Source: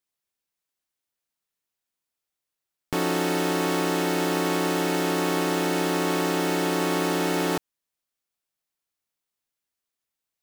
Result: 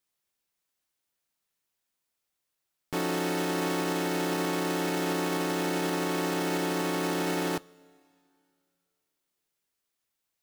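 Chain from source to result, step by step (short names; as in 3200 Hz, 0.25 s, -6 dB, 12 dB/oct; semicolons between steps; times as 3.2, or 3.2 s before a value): limiter -24.5 dBFS, peak gain reduction 12 dB; two-slope reverb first 0.2 s, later 2.6 s, from -18 dB, DRR 18 dB; gain +3 dB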